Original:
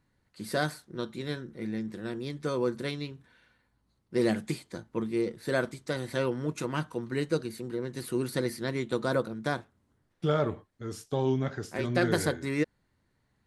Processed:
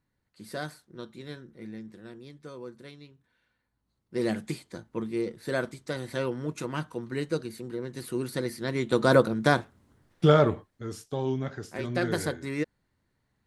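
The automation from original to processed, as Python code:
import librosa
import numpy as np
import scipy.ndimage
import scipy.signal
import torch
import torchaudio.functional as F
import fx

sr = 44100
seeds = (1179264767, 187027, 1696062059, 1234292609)

y = fx.gain(x, sr, db=fx.line((1.66, -6.5), (2.6, -13.0), (3.13, -13.0), (4.36, -1.0), (8.55, -1.0), (9.12, 8.5), (10.26, 8.5), (11.13, -2.0)))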